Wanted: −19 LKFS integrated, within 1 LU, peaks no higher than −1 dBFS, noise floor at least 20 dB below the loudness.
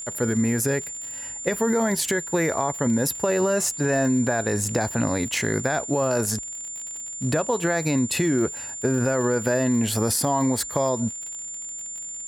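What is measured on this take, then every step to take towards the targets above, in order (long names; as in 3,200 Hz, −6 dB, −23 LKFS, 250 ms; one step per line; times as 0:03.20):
crackle rate 48 per second; interfering tone 7,200 Hz; level of the tone −32 dBFS; integrated loudness −24.0 LKFS; sample peak −8.5 dBFS; target loudness −19.0 LKFS
→ click removal
notch filter 7,200 Hz, Q 30
level +5 dB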